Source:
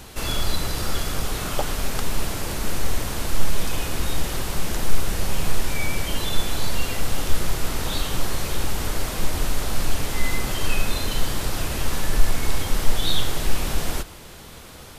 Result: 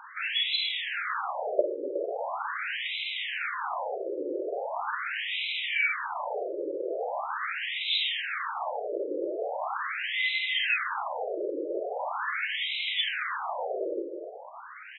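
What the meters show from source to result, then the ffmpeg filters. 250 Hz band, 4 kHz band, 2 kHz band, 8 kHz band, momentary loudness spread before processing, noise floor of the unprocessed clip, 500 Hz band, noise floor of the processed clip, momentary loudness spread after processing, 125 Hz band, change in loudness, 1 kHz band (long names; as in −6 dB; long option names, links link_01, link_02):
−9.5 dB, −1.0 dB, +2.5 dB, below −40 dB, 3 LU, −41 dBFS, +1.5 dB, −44 dBFS, 7 LU, below −40 dB, −2.5 dB, 0.0 dB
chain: -filter_complex "[0:a]aeval=exprs='val(0)+0.0501*sin(2*PI*7500*n/s)':channel_layout=same,asplit=2[link_01][link_02];[link_02]asplit=4[link_03][link_04][link_05][link_06];[link_03]adelay=364,afreqshift=-36,volume=-11.5dB[link_07];[link_04]adelay=728,afreqshift=-72,volume=-20.6dB[link_08];[link_05]adelay=1092,afreqshift=-108,volume=-29.7dB[link_09];[link_06]adelay=1456,afreqshift=-144,volume=-38.9dB[link_10];[link_07][link_08][link_09][link_10]amix=inputs=4:normalize=0[link_11];[link_01][link_11]amix=inputs=2:normalize=0,acrusher=bits=5:mode=log:mix=0:aa=0.000001,asplit=2[link_12][link_13];[link_13]aecho=0:1:49.56|259.5:0.355|0.316[link_14];[link_12][link_14]amix=inputs=2:normalize=0,afftfilt=real='re*between(b*sr/1024,420*pow(2900/420,0.5+0.5*sin(2*PI*0.41*pts/sr))/1.41,420*pow(2900/420,0.5+0.5*sin(2*PI*0.41*pts/sr))*1.41)':imag='im*between(b*sr/1024,420*pow(2900/420,0.5+0.5*sin(2*PI*0.41*pts/sr))/1.41,420*pow(2900/420,0.5+0.5*sin(2*PI*0.41*pts/sr))*1.41)':win_size=1024:overlap=0.75,volume=5.5dB"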